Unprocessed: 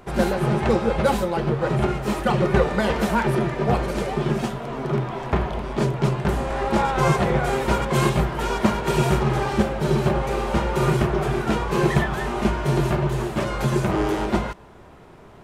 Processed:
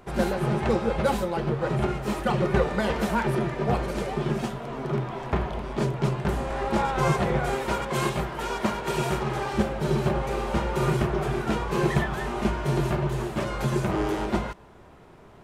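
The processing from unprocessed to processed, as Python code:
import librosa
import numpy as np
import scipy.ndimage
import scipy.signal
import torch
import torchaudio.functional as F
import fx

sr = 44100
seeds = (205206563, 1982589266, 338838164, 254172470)

y = fx.low_shelf(x, sr, hz=250.0, db=-6.5, at=(7.55, 9.55))
y = y * librosa.db_to_amplitude(-4.0)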